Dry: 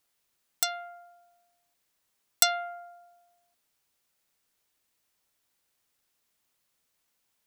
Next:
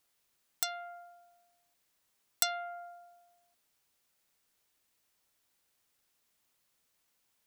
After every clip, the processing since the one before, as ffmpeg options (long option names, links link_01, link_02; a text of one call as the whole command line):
ffmpeg -i in.wav -af "acompressor=threshold=-39dB:ratio=1.5" out.wav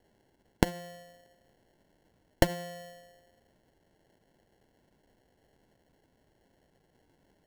ffmpeg -i in.wav -af "highshelf=frequency=6400:gain=10,acrusher=samples=36:mix=1:aa=0.000001" out.wav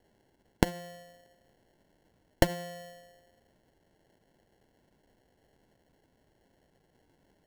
ffmpeg -i in.wav -af anull out.wav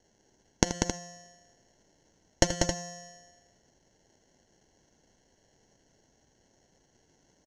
ffmpeg -i in.wav -filter_complex "[0:a]lowpass=frequency=6200:width_type=q:width=14,asplit=2[link_01][link_02];[link_02]aecho=0:1:81|192|269:0.237|0.562|0.355[link_03];[link_01][link_03]amix=inputs=2:normalize=0,volume=-1dB" out.wav